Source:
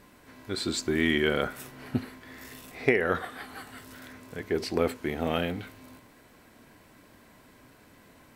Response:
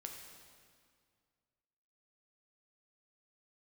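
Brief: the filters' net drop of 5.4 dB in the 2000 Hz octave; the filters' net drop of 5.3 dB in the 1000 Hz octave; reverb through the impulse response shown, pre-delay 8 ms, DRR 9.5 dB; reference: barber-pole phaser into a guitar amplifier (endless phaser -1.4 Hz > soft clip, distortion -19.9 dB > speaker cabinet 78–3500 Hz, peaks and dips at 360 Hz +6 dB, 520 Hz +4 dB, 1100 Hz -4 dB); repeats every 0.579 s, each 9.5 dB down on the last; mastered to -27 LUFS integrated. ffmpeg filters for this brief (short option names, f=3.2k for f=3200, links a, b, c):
-filter_complex "[0:a]equalizer=f=1k:t=o:g=-5.5,equalizer=f=2k:t=o:g=-4.5,aecho=1:1:579|1158|1737|2316:0.335|0.111|0.0365|0.012,asplit=2[a][b];[1:a]atrim=start_sample=2205,adelay=8[c];[b][c]afir=irnorm=-1:irlink=0,volume=-6dB[d];[a][d]amix=inputs=2:normalize=0,asplit=2[e][f];[f]afreqshift=-1.4[g];[e][g]amix=inputs=2:normalize=1,asoftclip=threshold=-16.5dB,highpass=78,equalizer=f=360:t=q:w=4:g=6,equalizer=f=520:t=q:w=4:g=4,equalizer=f=1.1k:t=q:w=4:g=-4,lowpass=f=3.5k:w=0.5412,lowpass=f=3.5k:w=1.3066,volume=4dB"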